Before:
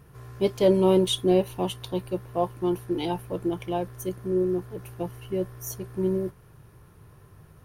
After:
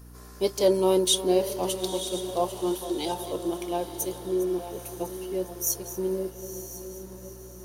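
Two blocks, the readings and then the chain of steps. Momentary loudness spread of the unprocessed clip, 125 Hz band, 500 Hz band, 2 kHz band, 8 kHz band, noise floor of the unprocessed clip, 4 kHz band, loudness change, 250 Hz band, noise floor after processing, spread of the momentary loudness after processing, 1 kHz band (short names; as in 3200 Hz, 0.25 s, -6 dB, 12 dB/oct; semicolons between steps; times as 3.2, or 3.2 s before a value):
14 LU, -8.0 dB, -1.0 dB, -1.0 dB, +10.5 dB, -53 dBFS, +3.0 dB, -1.0 dB, -3.0 dB, -45 dBFS, 16 LU, 0.0 dB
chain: regenerating reverse delay 0.527 s, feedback 58%, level -13.5 dB; HPF 310 Hz 12 dB/oct; hum 60 Hz, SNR 18 dB; resonant high shelf 3800 Hz +8.5 dB, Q 1.5; diffused feedback echo 0.932 s, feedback 43%, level -11.5 dB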